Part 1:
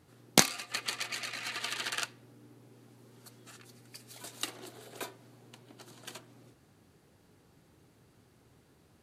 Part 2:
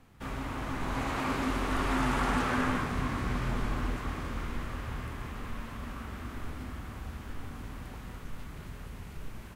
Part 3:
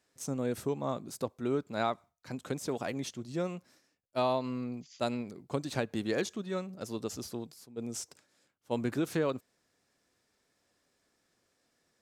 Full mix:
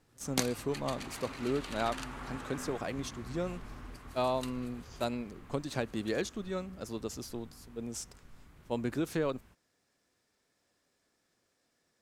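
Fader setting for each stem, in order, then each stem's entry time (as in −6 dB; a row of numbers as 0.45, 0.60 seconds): −10.0, −14.5, −1.5 decibels; 0.00, 0.00, 0.00 seconds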